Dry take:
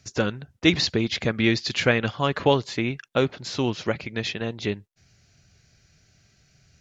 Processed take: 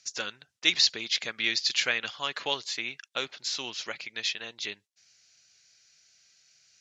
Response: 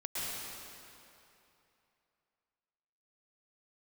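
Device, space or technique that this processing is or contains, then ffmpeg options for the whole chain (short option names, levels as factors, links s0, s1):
piezo pickup straight into a mixer: -af "lowpass=6400,aderivative,volume=2.37"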